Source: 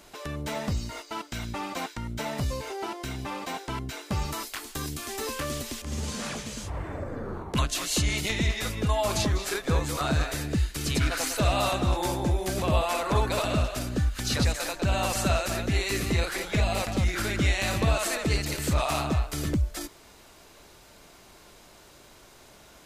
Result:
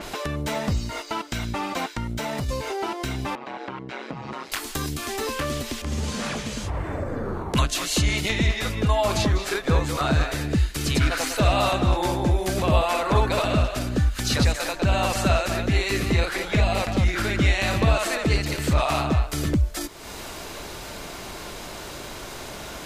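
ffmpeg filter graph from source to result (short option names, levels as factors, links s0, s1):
-filter_complex "[0:a]asettb=1/sr,asplit=3[s0][s1][s2];[s0]atrim=end=2.034[s3];[s1]atrim=start=2.03:end=2.49,asetpts=PTS-STARTPTS,afade=t=in:d=0.004:c=qsin,afade=t=out:st=0.456:d=0.004:c=qsin,acompressor=threshold=0.0316:ratio=6:attack=3.2:release=140:knee=1:detection=peak,aeval=exprs='0.0473*(abs(mod(val(0)/0.0473+3,4)-2)-1)':c=same[s4];[s2]atrim=start=2.486[s5];[s3][s4]acrossfade=d=0.004:c1=hsin:c2=qsin[s6];[s6][s5]acrossfade=d=0.004:c1=qsin:c2=hsin,asettb=1/sr,asplit=3[s7][s8][s9];[s7]atrim=end=3.354[s10];[s8]atrim=start=3.35:end=4.52,asetpts=PTS-STARTPTS,afade=t=in:d=0.004:c=qsin,afade=t=out:st=1.166:d=0.004:c=qsin,aeval=exprs='val(0)*sin(2*PI*65*n/s)':c=same,acompressor=threshold=0.01:ratio=5:attack=3.2:release=140:knee=1:detection=peak,highpass=170,lowpass=2400[s11];[s9]atrim=start=4.516[s12];[s10][s11]acrossfade=d=0.004:c1=hsin:c2=qsin[s13];[s13][s12]acrossfade=d=0.004:c1=qsin:c2=hsin,acompressor=mode=upward:threshold=0.0398:ratio=2.5,adynamicequalizer=threshold=0.00501:dfrequency=5100:dqfactor=0.7:tfrequency=5100:tqfactor=0.7:attack=5:release=100:ratio=0.375:range=3.5:mode=cutabove:tftype=highshelf,volume=1.68"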